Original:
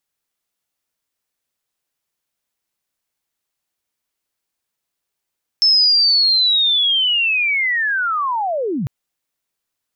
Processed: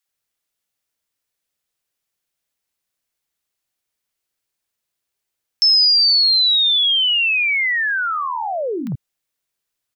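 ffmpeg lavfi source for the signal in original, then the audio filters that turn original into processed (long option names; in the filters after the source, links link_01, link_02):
-f lavfi -i "aevalsrc='pow(10,(-9.5-9*t/3.25)/20)*sin(2*PI*(5300*t-5190*t*t/(2*3.25)))':duration=3.25:sample_rate=44100"
-filter_complex "[0:a]acrossover=split=260|950[link_01][link_02][link_03];[link_02]adelay=50[link_04];[link_01]adelay=80[link_05];[link_05][link_04][link_03]amix=inputs=3:normalize=0"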